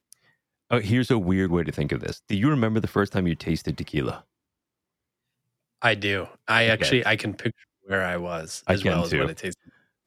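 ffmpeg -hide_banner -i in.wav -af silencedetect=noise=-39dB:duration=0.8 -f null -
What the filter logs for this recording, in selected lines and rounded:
silence_start: 4.19
silence_end: 5.82 | silence_duration: 1.63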